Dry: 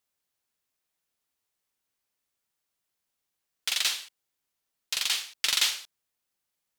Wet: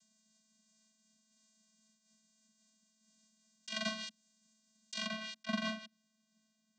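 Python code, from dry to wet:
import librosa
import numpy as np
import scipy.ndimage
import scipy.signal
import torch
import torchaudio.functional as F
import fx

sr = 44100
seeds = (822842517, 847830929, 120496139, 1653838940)

y = fx.env_lowpass_down(x, sr, base_hz=970.0, full_db=-24.5)
y = fx.over_compress(y, sr, threshold_db=-43.0, ratio=-1.0)
y = fx.high_shelf(y, sr, hz=2800.0, db=11.5)
y = fx.vocoder(y, sr, bands=16, carrier='square', carrier_hz=218.0)
y = fx.bass_treble(y, sr, bass_db=14, treble_db=fx.steps((0.0, 12.0), (5.05, 3.0)))
y = fx.am_noise(y, sr, seeds[0], hz=5.7, depth_pct=55)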